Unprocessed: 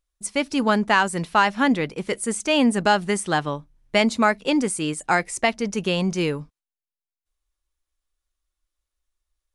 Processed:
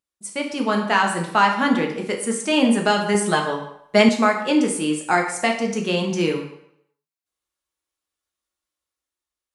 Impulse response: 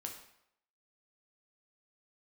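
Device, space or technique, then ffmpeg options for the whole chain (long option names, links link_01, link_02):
far laptop microphone: -filter_complex "[1:a]atrim=start_sample=2205[link_01];[0:a][link_01]afir=irnorm=-1:irlink=0,highpass=140,dynaudnorm=framelen=180:gausssize=9:maxgain=4dB,asettb=1/sr,asplit=3[link_02][link_03][link_04];[link_02]atrim=end=3.144[link_05];[link_03]atrim=start=3.14:end=4.09,asetpts=PTS-STARTPTS,afade=type=in:duration=0.004:curve=qsin,afade=type=out:start_time=0.946:duration=0.004:curve=qsin,aecho=1:1:4.7:0.81,atrim=end_sample=41895[link_06];[link_04]atrim=start=4.086[link_07];[link_05][link_06]acrossfade=duration=0.004:curve1=hsin:curve2=qsin[link_08];[link_08][link_07]acrossfade=duration=0.004:curve1=qsin:curve2=hsin"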